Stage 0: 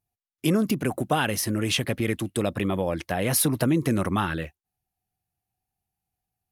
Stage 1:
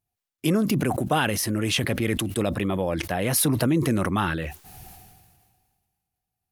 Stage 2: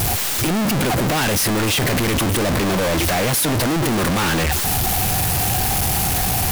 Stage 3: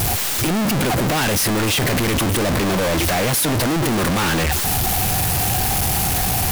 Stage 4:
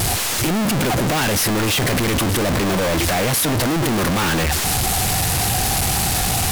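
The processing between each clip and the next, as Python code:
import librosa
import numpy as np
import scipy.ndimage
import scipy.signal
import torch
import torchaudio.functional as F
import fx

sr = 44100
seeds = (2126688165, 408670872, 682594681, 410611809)

y1 = fx.sustainer(x, sr, db_per_s=33.0)
y2 = np.sign(y1) * np.sqrt(np.mean(np.square(y1)))
y2 = y2 * librosa.db_to_amplitude(7.5)
y3 = y2
y4 = np.repeat(y3[::2], 2)[:len(y3)]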